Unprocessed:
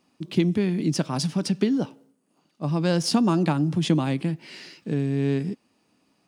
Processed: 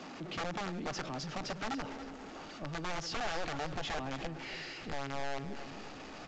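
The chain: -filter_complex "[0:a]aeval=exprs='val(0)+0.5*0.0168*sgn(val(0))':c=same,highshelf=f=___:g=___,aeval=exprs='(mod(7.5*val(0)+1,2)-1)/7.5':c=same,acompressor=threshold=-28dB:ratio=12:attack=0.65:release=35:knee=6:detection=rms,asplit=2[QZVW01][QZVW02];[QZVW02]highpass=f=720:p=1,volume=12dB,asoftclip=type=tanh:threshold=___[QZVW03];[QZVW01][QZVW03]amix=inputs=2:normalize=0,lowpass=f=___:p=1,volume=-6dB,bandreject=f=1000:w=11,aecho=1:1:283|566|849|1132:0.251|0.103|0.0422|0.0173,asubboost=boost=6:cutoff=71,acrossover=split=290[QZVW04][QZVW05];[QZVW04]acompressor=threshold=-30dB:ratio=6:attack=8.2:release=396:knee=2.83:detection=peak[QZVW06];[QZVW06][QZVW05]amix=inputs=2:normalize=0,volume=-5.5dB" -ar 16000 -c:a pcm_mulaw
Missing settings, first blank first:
2000, -11.5, -24.5dB, 5400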